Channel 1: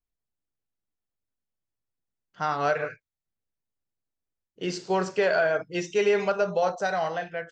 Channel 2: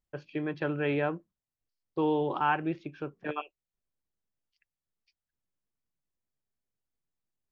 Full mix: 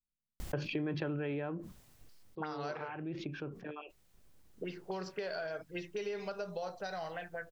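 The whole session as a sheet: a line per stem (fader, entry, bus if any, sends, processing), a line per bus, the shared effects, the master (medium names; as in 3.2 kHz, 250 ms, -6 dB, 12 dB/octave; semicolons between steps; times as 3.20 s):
-14.0 dB, 0.00 s, no send, touch-sensitive low-pass 210–4900 Hz up, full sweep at -23.5 dBFS
+2.5 dB, 0.40 s, no send, level flattener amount 70%; auto duck -22 dB, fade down 1.40 s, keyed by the first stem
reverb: none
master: bass shelf 500 Hz +5.5 dB; compression 4:1, threshold -36 dBFS, peak gain reduction 15 dB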